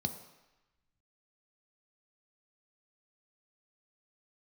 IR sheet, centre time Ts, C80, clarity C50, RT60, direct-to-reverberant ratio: 14 ms, 12.0 dB, 10.5 dB, 1.0 s, 6.5 dB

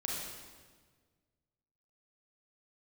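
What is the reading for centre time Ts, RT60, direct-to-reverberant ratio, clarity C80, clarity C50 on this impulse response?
91 ms, 1.5 s, -3.5 dB, 1.5 dB, -1.0 dB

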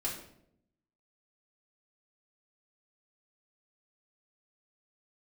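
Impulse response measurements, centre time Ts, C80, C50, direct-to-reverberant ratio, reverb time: 34 ms, 9.0 dB, 5.5 dB, -6.0 dB, 0.75 s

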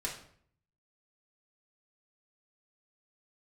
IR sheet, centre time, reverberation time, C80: 25 ms, 0.60 s, 11.0 dB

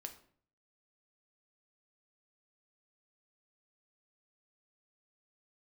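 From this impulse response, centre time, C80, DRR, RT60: 11 ms, 15.5 dB, 5.0 dB, 0.55 s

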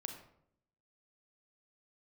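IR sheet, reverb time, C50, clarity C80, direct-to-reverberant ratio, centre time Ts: 0.70 s, 7.0 dB, 9.5 dB, 4.0 dB, 22 ms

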